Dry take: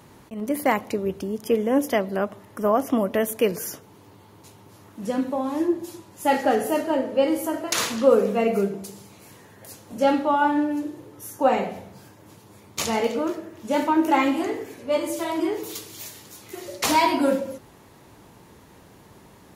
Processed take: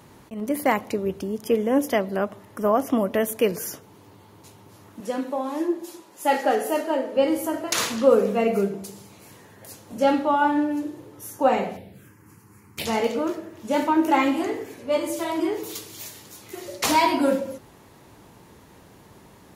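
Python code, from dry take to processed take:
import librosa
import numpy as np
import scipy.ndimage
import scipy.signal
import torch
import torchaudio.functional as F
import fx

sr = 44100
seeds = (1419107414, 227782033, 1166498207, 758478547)

y = fx.highpass(x, sr, hz=300.0, slope=12, at=(5.0, 7.16))
y = fx.env_phaser(y, sr, low_hz=530.0, high_hz=1200.0, full_db=-31.0, at=(11.76, 12.85), fade=0.02)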